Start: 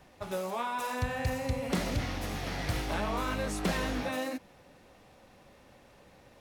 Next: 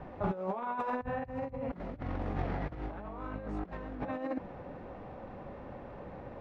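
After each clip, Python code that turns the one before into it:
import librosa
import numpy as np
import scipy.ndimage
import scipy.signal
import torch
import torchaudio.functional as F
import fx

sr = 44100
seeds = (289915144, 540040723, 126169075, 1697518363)

y = scipy.signal.sosfilt(scipy.signal.butter(2, 1200.0, 'lowpass', fs=sr, output='sos'), x)
y = fx.over_compress(y, sr, threshold_db=-40.0, ratio=-0.5)
y = y * librosa.db_to_amplitude(5.0)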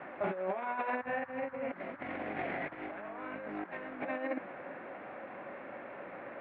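y = fx.cabinet(x, sr, low_hz=420.0, low_slope=12, high_hz=2900.0, hz=(460.0, 880.0, 1200.0, 2200.0), db=(-8, -9, -10, 6))
y = fx.dmg_noise_band(y, sr, seeds[0], low_hz=810.0, high_hz=1800.0, level_db=-60.0)
y = y * librosa.db_to_amplitude(6.5)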